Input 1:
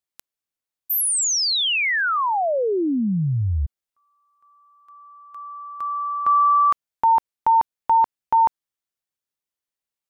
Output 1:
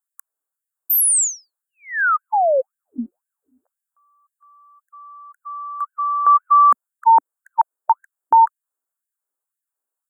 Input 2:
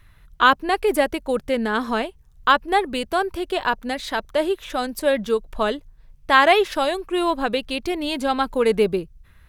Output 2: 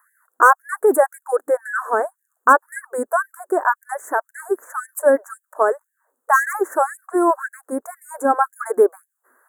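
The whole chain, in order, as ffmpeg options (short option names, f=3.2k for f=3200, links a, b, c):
-af "aeval=exprs='0.473*(abs(mod(val(0)/0.473+3,4)-2)-1)':c=same,asuperstop=centerf=3500:order=12:qfactor=0.64,afftfilt=real='re*gte(b*sr/1024,240*pow(1600/240,0.5+0.5*sin(2*PI*1.9*pts/sr)))':imag='im*gte(b*sr/1024,240*pow(1600/240,0.5+0.5*sin(2*PI*1.9*pts/sr)))':win_size=1024:overlap=0.75,volume=5.5dB"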